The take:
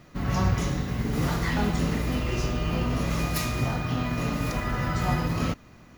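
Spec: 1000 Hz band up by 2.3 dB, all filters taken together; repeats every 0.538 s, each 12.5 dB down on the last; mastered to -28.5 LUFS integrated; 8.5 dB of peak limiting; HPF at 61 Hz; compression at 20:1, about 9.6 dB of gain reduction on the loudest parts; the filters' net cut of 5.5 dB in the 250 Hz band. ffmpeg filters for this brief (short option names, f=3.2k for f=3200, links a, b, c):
-af "highpass=61,equalizer=f=250:t=o:g=-8.5,equalizer=f=1k:t=o:g=3.5,acompressor=threshold=-30dB:ratio=20,alimiter=level_in=4.5dB:limit=-24dB:level=0:latency=1,volume=-4.5dB,aecho=1:1:538|1076|1614:0.237|0.0569|0.0137,volume=9dB"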